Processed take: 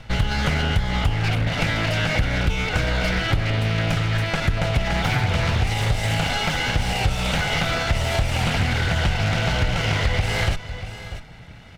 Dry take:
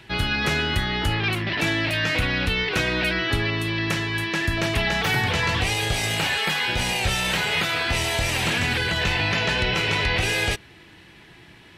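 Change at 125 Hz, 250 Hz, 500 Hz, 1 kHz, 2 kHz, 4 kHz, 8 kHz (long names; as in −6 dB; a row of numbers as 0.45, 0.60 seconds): +6.0, +1.0, +1.0, +1.5, −2.5, −2.5, −2.5 decibels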